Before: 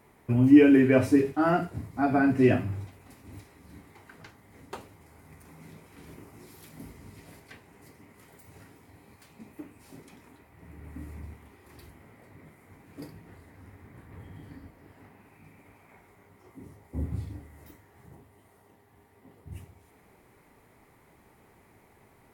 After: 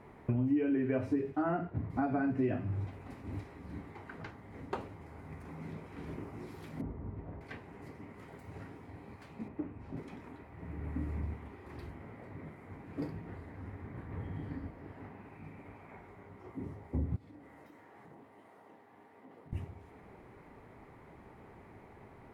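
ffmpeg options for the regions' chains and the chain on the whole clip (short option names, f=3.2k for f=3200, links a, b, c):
-filter_complex "[0:a]asettb=1/sr,asplit=3[a][b][c];[a]atrim=end=1.424[d];[b]atrim=start=1.42:end=1.9,asetpts=PTS-STARTPTS,afade=t=in:d=0.004:c=qsin,afade=t=out:st=0.476:d=0.004:c=qsin,agate=range=-33dB:threshold=-43dB:ratio=3:release=100:detection=peak,lowpass=2.7k[e];[c]atrim=start=1.896[f];[d][e]acrossfade=d=0.004:c1=hsin:c2=qsin[g];[g][f]acrossfade=d=0.004:c1=qsin:c2=hsin,asettb=1/sr,asplit=3[h][i][j];[h]atrim=end=6.814[k];[i]atrim=start=6.81:end=7.41,asetpts=PTS-STARTPTS,afade=t=in:d=0.004:c=qsin,afade=t=out:st=0.596:d=0.004:c=qsin,lowpass=1.1k,asubboost=boost=10:cutoff=110[l];[j]atrim=start=7.406[m];[k][l]acrossfade=d=0.004:c1=hsin:c2=qsin[n];[n][m]acrossfade=d=0.004:c1=qsin:c2=hsin,asettb=1/sr,asplit=3[o][p][q];[o]atrim=end=9.484[r];[p]atrim=start=9.48:end=9.97,asetpts=PTS-STARTPTS,afade=t=in:d=0.004:c=qsin,afade=t=out:st=0.486:d=0.004:c=qsin,lowpass=f=1.5k:p=1,asubboost=boost=9:cutoff=210[s];[q]atrim=start=9.966[t];[r][s]acrossfade=d=0.004:c1=hsin:c2=qsin[u];[u][t]acrossfade=d=0.004:c1=qsin:c2=hsin,asettb=1/sr,asplit=3[v][w][x];[v]atrim=end=17.164[y];[w]atrim=start=17.16:end=19.53,asetpts=PTS-STARTPTS,afade=t=in:d=0.004:c=qsin,afade=t=out:st=2.366:d=0.004:c=qsin,highpass=260,bandreject=f=390:w=8.7,acompressor=threshold=-55dB:ratio=6:attack=3.2:release=140:knee=1:detection=peak[z];[x]atrim=start=19.526[aa];[y][z]acrossfade=d=0.004:c1=hsin:c2=qsin[ab];[ab][aa]acrossfade=d=0.004:c1=qsin:c2=hsin,aemphasis=mode=reproduction:type=50kf,acompressor=threshold=-36dB:ratio=5,highshelf=f=3.1k:g=-9,volume=5.5dB"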